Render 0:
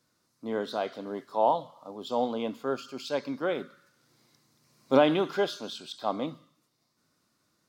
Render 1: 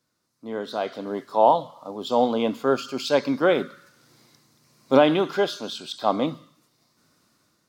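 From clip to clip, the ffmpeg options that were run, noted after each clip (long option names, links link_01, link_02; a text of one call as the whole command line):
ffmpeg -i in.wav -af "dynaudnorm=framelen=320:gausssize=5:maxgain=13dB,volume=-2.5dB" out.wav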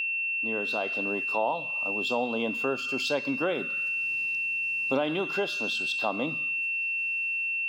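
ffmpeg -i in.wav -af "equalizer=frequency=3100:width_type=o:width=0.23:gain=5,aeval=exprs='val(0)+0.0501*sin(2*PI*2700*n/s)':channel_layout=same,acompressor=threshold=-27dB:ratio=3" out.wav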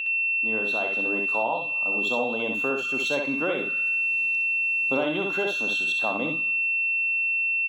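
ffmpeg -i in.wav -filter_complex "[0:a]asuperstop=centerf=4900:order=8:qfactor=4.7,asplit=2[link_01][link_02];[link_02]aecho=0:1:63|73:0.562|0.282[link_03];[link_01][link_03]amix=inputs=2:normalize=0" out.wav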